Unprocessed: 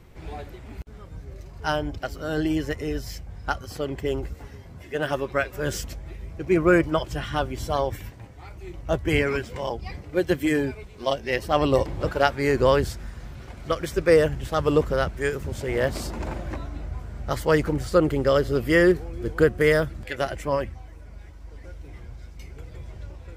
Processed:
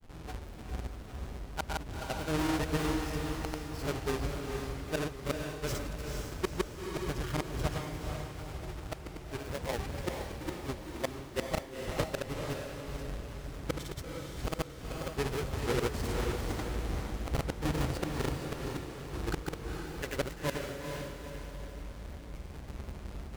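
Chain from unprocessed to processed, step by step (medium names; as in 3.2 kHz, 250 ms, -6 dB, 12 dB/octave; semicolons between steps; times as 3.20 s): square wave that keeps the level; inverted gate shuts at -13 dBFS, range -32 dB; granulator; on a send: echo that smears into a reverb 461 ms, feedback 48%, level -3.5 dB; on the sum: trim -8.5 dB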